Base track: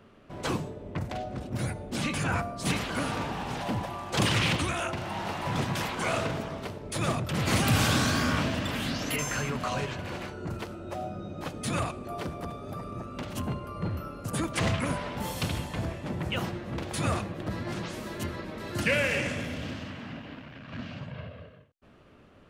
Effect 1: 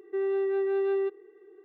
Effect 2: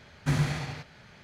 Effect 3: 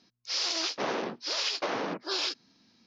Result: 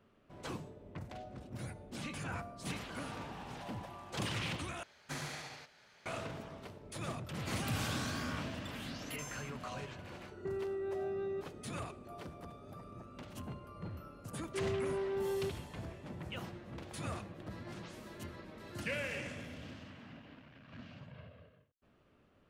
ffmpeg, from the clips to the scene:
-filter_complex "[1:a]asplit=2[a][b];[0:a]volume=-12.5dB[c];[2:a]bass=f=250:g=-14,treble=f=4k:g=5[d];[a]acompressor=threshold=-33dB:ratio=6:attack=3.2:release=140:knee=1:detection=peak[e];[c]asplit=2[f][g];[f]atrim=end=4.834[h];[d]atrim=end=1.23,asetpts=PTS-STARTPTS,volume=-9dB[i];[g]atrim=start=6.056[j];[e]atrim=end=1.64,asetpts=PTS-STARTPTS,volume=-3.5dB,afade=t=in:d=0.004:c=hsin,afade=t=out:st=1.636:d=0.004:c=hsin,adelay=10320[k];[b]atrim=end=1.64,asetpts=PTS-STARTPTS,volume=-9.5dB,afade=t=in:d=0.004:c=hsin,afade=t=out:st=1.636:d=0.004:c=hsin,adelay=14410[l];[h][i]acrossfade=d=0.004:c1=hsin:c2=hsin[m];[m][j]acrossfade=d=0.004:c1=hsin:c2=hsin[n];[n][k][l]amix=inputs=3:normalize=0"

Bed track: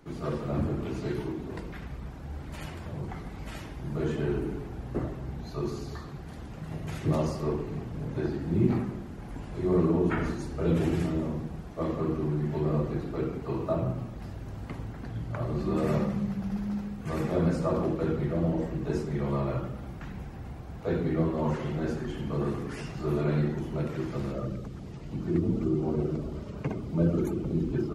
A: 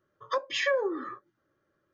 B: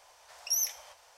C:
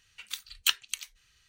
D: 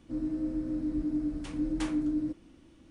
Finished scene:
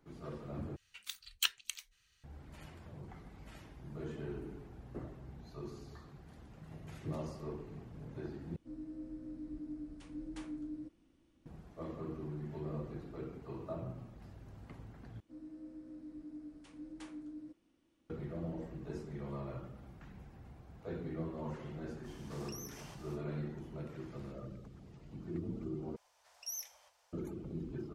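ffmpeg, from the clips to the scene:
-filter_complex "[4:a]asplit=2[a][b];[2:a]asplit=2[c][d];[0:a]volume=-13.5dB[e];[b]lowshelf=f=160:g=-10.5[f];[c]acompressor=threshold=-45dB:ratio=6:attack=3.2:release=140:knee=1:detection=peak[g];[e]asplit=5[h][i][j][k][l];[h]atrim=end=0.764[m];[3:a]atrim=end=1.48,asetpts=PTS-STARTPTS,volume=-7dB[n];[i]atrim=start=2.236:end=8.564[o];[a]atrim=end=2.9,asetpts=PTS-STARTPTS,volume=-13.5dB[p];[j]atrim=start=11.456:end=15.204[q];[f]atrim=end=2.9,asetpts=PTS-STARTPTS,volume=-15dB[r];[k]atrim=start=18.096:end=25.964[s];[d]atrim=end=1.17,asetpts=PTS-STARTPTS,volume=-13dB[t];[l]atrim=start=27.126[u];[g]atrim=end=1.17,asetpts=PTS-STARTPTS,volume=-3dB,afade=t=in:d=0.05,afade=t=out:st=1.12:d=0.05,adelay=22020[v];[m][n]acrossfade=d=0.004:c1=hsin:c2=hsin[w];[w][o]acrossfade=d=0.004:c1=hsin:c2=hsin[x];[x][p]acrossfade=d=0.004:c1=hsin:c2=hsin[y];[y][q]acrossfade=d=0.004:c1=hsin:c2=hsin[z];[z][r]acrossfade=d=0.004:c1=hsin:c2=hsin[aa];[aa][s]acrossfade=d=0.004:c1=hsin:c2=hsin[ab];[ab][t]acrossfade=d=0.004:c1=hsin:c2=hsin[ac];[ac][u]acrossfade=d=0.004:c1=hsin:c2=hsin[ad];[ad][v]amix=inputs=2:normalize=0"

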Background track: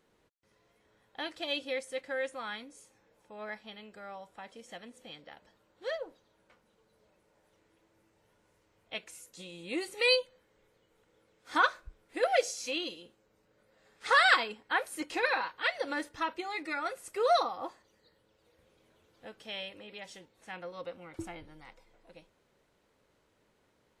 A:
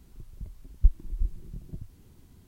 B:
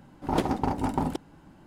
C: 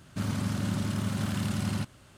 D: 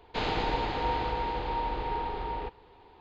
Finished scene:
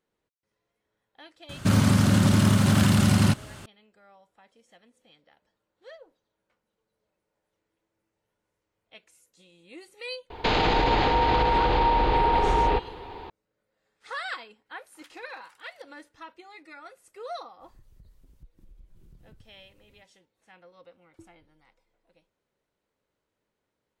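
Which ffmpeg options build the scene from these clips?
-filter_complex "[0:a]volume=-11dB[a];[3:a]alimiter=level_in=21.5dB:limit=-1dB:release=50:level=0:latency=1[b];[4:a]alimiter=level_in=27.5dB:limit=-1dB:release=50:level=0:latency=1[c];[2:a]highpass=f=1.5k:w=0.5412,highpass=f=1.5k:w=1.3066[d];[1:a]acompressor=threshold=-39dB:ratio=6:attack=3.2:release=140:knee=1:detection=peak[e];[b]atrim=end=2.17,asetpts=PTS-STARTPTS,volume=-9.5dB,afade=t=in:d=0.004:c=hsin,afade=t=out:st=2.166:d=0.004:c=hsin,adelay=1490[f];[c]atrim=end=3,asetpts=PTS-STARTPTS,volume=-12.5dB,afade=t=in:d=0.004:c=hsin,afade=t=out:st=2.996:d=0.004:c=hsin,adelay=10300[g];[d]atrim=end=1.66,asetpts=PTS-STARTPTS,volume=-16dB,afade=t=in:d=0.004:c=hsin,afade=t=out:st=1.656:d=0.004:c=hsin,adelay=14660[h];[e]atrim=end=2.47,asetpts=PTS-STARTPTS,volume=-9dB,afade=t=in:d=0.05,afade=t=out:st=2.42:d=0.05,adelay=17590[i];[a][f][g][h][i]amix=inputs=5:normalize=0"

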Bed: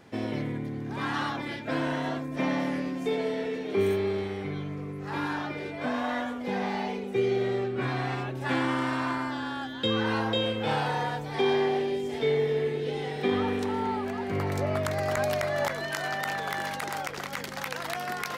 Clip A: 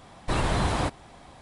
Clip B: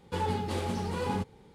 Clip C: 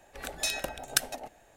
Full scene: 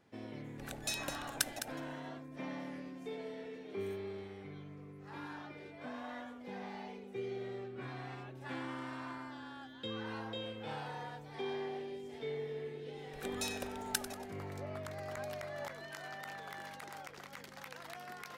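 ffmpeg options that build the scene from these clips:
-filter_complex "[3:a]asplit=2[a][b];[0:a]volume=-15dB[c];[a]aecho=1:1:209:0.335[d];[b]asplit=6[e][f][g][h][i][j];[f]adelay=94,afreqshift=-110,volume=-13.5dB[k];[g]adelay=188,afreqshift=-220,volume=-19.9dB[l];[h]adelay=282,afreqshift=-330,volume=-26.3dB[m];[i]adelay=376,afreqshift=-440,volume=-32.6dB[n];[j]adelay=470,afreqshift=-550,volume=-39dB[o];[e][k][l][m][n][o]amix=inputs=6:normalize=0[p];[d]atrim=end=1.56,asetpts=PTS-STARTPTS,volume=-7.5dB,afade=t=in:d=0.004:c=hsin,afade=t=out:st=1.556:d=0.004:c=hsin,adelay=440[q];[p]atrim=end=1.56,asetpts=PTS-STARTPTS,volume=-9.5dB,afade=t=in:d=0.004:c=hsin,afade=t=out:st=1.556:d=0.004:c=hsin,adelay=12980[r];[c][q][r]amix=inputs=3:normalize=0"

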